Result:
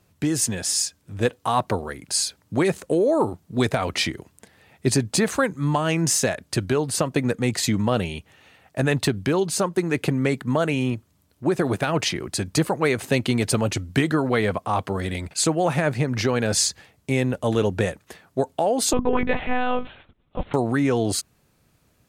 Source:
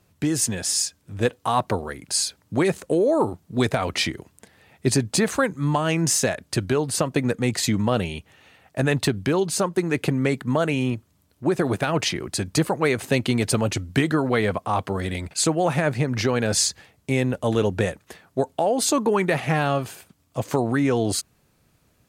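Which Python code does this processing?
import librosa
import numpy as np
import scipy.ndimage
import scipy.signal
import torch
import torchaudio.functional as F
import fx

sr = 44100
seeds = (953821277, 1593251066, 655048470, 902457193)

y = fx.lpc_monotone(x, sr, seeds[0], pitch_hz=250.0, order=10, at=(18.93, 20.54))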